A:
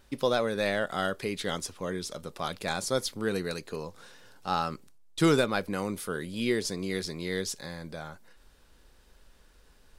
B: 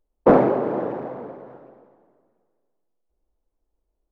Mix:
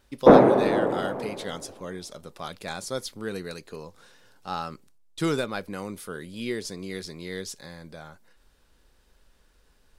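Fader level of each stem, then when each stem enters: -3.0, +1.5 dB; 0.00, 0.00 s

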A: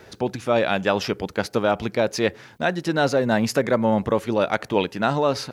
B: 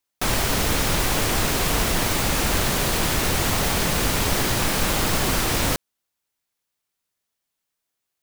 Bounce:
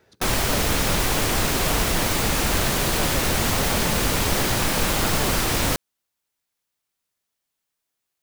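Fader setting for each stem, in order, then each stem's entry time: -14.0, 0.0 dB; 0.00, 0.00 s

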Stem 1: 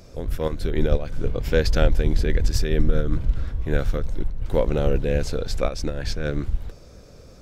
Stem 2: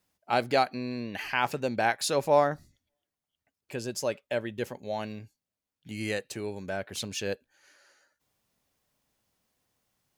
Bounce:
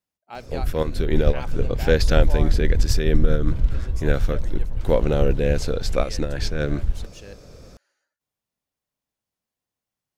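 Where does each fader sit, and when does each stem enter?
+2.0, -11.0 dB; 0.35, 0.00 s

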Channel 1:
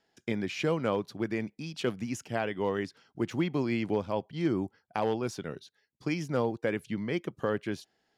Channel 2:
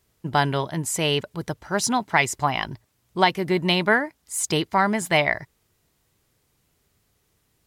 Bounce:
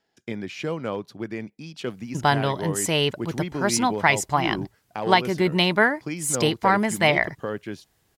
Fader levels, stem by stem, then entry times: 0.0, +0.5 dB; 0.00, 1.90 s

